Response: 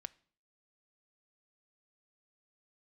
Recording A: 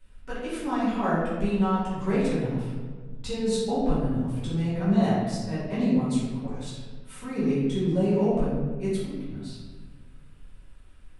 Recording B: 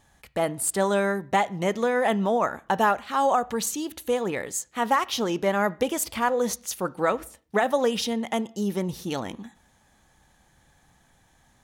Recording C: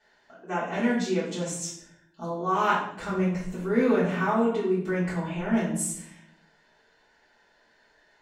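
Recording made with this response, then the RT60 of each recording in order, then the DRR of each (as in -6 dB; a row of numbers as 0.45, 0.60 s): B; 1.5, 0.50, 0.65 s; -11.0, 15.0, -8.5 dB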